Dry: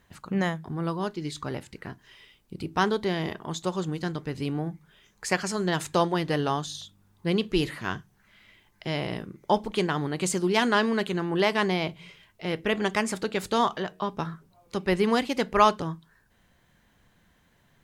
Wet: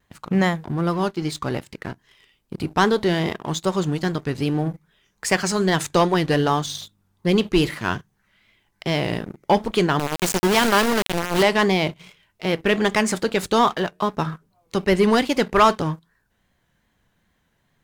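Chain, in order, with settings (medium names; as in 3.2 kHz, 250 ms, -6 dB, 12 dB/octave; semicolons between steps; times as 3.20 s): 9.99–11.43 s: small samples zeroed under -24 dBFS; vibrato 2.5 Hz 66 cents; waveshaping leveller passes 2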